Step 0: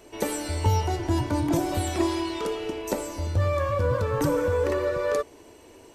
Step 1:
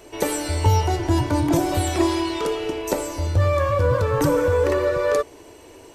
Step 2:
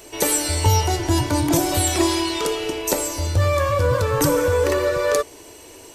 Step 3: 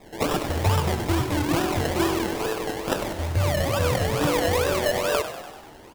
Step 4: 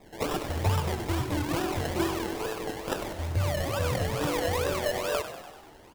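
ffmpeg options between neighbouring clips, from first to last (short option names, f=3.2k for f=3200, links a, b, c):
-af "equalizer=f=220:t=o:w=0.25:g=-9,acontrast=33"
-af "highshelf=f=3.1k:g=11"
-filter_complex "[0:a]acrusher=samples=29:mix=1:aa=0.000001:lfo=1:lforange=17.4:lforate=2.3,asplit=2[a][b];[b]asplit=8[c][d][e][f][g][h][i][j];[c]adelay=97,afreqshift=46,volume=-11dB[k];[d]adelay=194,afreqshift=92,volume=-15dB[l];[e]adelay=291,afreqshift=138,volume=-19dB[m];[f]adelay=388,afreqshift=184,volume=-23dB[n];[g]adelay=485,afreqshift=230,volume=-27.1dB[o];[h]adelay=582,afreqshift=276,volume=-31.1dB[p];[i]adelay=679,afreqshift=322,volume=-35.1dB[q];[j]adelay=776,afreqshift=368,volume=-39.1dB[r];[k][l][m][n][o][p][q][r]amix=inputs=8:normalize=0[s];[a][s]amix=inputs=2:normalize=0,volume=-4.5dB"
-af "aphaser=in_gain=1:out_gain=1:delay=3:decay=0.21:speed=1.5:type=triangular,volume=-6dB"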